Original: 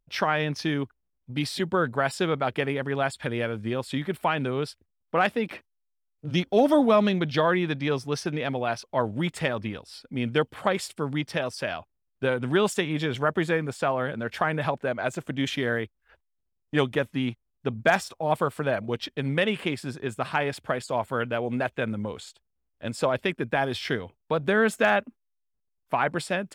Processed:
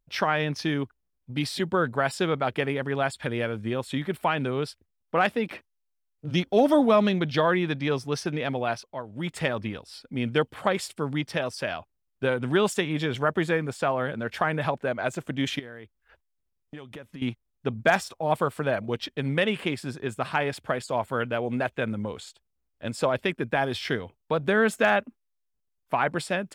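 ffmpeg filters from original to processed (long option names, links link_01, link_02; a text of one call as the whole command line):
ffmpeg -i in.wav -filter_complex "[0:a]asettb=1/sr,asplit=3[link_01][link_02][link_03];[link_01]atrim=end=3.614[link_04];[link_02]atrim=start=3.61:end=4.01,asetpts=PTS-STARTPTS,afade=type=in:duration=0.004:curve=qsin,afade=type=out:start_time=0.396:duration=0.004:curve=qsin,bandreject=frequency=4800:width=6.7[link_05];[link_03]atrim=start=4.006[link_06];[link_04][link_05]acrossfade=duration=0.004:curve1=hsin:curve2=qsin[link_07];[link_07][link_06]acrossfade=duration=0.004:curve1=qsin:curve2=hsin,asettb=1/sr,asplit=3[link_08][link_09][link_10];[link_08]atrim=end=15.594[link_11];[link_09]atrim=start=15.59:end=17.22,asetpts=PTS-STARTPTS,afade=type=in:duration=0.004:curve=qsin,afade=type=out:start_time=1.626:duration=0.004:curve=qsin,acompressor=threshold=-37dB:ratio=12:attack=3.2:release=140:knee=1:detection=peak[link_12];[link_10]atrim=start=17.216[link_13];[link_11][link_12]acrossfade=duration=0.004:curve1=hsin:curve2=qsin[link_14];[link_14][link_13]acrossfade=duration=0.004:curve1=qsin:curve2=hsin,asplit=3[link_15][link_16][link_17];[link_15]atrim=end=9.03,asetpts=PTS-STARTPTS,afade=type=out:start_time=8.71:duration=0.32:silence=0.211349[link_18];[link_16]atrim=start=9.03:end=9.07,asetpts=PTS-STARTPTS,volume=-13.5dB[link_19];[link_17]atrim=start=9.07,asetpts=PTS-STARTPTS,afade=type=in:duration=0.32:silence=0.211349[link_20];[link_18][link_19][link_20]concat=n=3:v=0:a=1" out.wav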